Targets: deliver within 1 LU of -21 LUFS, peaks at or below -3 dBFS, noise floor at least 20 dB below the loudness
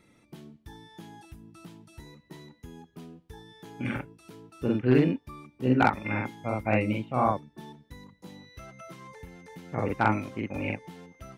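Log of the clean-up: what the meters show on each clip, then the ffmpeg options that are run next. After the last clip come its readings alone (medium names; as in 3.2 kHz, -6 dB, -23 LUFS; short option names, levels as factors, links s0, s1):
loudness -28.0 LUFS; peak level -11.0 dBFS; loudness target -21.0 LUFS
-> -af "volume=2.24"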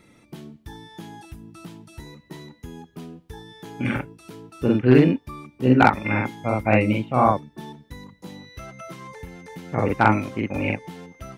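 loudness -21.0 LUFS; peak level -4.0 dBFS; noise floor -58 dBFS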